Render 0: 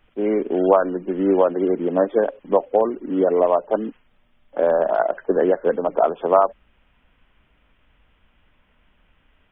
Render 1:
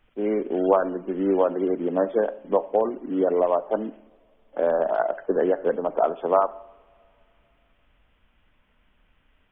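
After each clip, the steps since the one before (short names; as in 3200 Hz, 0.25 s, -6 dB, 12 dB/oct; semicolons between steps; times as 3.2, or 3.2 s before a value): two-slope reverb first 0.7 s, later 3 s, from -21 dB, DRR 15 dB; gain -4 dB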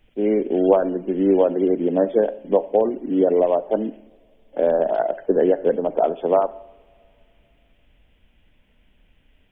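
bell 1200 Hz -13.5 dB 0.97 oct; gain +6 dB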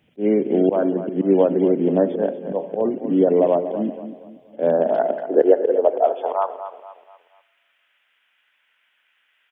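high-pass sweep 140 Hz -> 1400 Hz, 4.53–6.81; auto swell 0.101 s; feedback echo 0.238 s, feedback 39%, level -11.5 dB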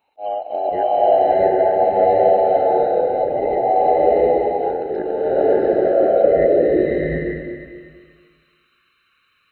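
band inversion scrambler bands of 1000 Hz; bloom reverb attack 0.8 s, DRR -9 dB; gain -6.5 dB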